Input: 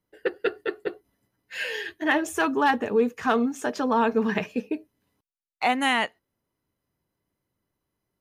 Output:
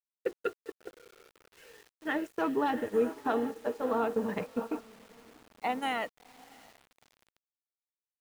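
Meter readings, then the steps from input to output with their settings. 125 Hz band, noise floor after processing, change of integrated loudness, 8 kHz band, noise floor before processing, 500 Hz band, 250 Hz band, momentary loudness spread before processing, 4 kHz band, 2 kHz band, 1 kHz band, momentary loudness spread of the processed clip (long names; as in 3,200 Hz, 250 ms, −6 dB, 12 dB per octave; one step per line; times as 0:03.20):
−7.5 dB, below −85 dBFS, −7.5 dB, −14.0 dB, −83 dBFS, −5.5 dB, −8.0 dB, 10 LU, −13.0 dB, −12.5 dB, −8.5 dB, 11 LU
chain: phase shifter 0.4 Hz, delay 1.9 ms, feedback 34%
amplitude modulation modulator 110 Hz, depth 10%
slack as between gear wheels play −41.5 dBFS
dynamic equaliser 1,600 Hz, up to −5 dB, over −43 dBFS, Q 4.6
feedback delay with all-pass diffusion 681 ms, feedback 45%, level −8 dB
noise gate −27 dBFS, range −16 dB
parametric band 5,400 Hz −7 dB 2.4 octaves
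hollow resonant body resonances 480/1,400/4,000 Hz, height 7 dB, ringing for 40 ms
bit-depth reduction 8 bits, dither none
level −7.5 dB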